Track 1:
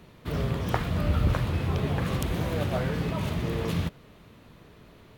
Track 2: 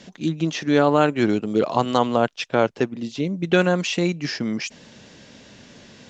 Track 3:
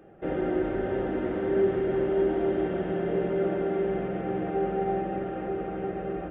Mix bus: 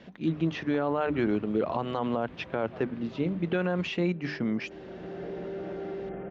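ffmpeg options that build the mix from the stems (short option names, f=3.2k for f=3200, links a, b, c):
-filter_complex "[0:a]highpass=f=180:p=1,volume=-15.5dB[a];[1:a]highshelf=f=6.8k:g=-6,bandreject=f=50:t=h:w=6,bandreject=f=100:t=h:w=6,bandreject=f=150:t=h:w=6,bandreject=f=200:t=h:w=6,bandreject=f=250:t=h:w=6,bandreject=f=300:t=h:w=6,volume=-3.5dB,asplit=2[b][c];[2:a]alimiter=limit=-23.5dB:level=0:latency=1:release=12,adelay=2150,volume=-6.5dB[d];[c]apad=whole_len=372972[e];[d][e]sidechaincompress=threshold=-37dB:ratio=8:attack=16:release=747[f];[a][b][f]amix=inputs=3:normalize=0,lowpass=2.6k,alimiter=limit=-17.5dB:level=0:latency=1:release=46"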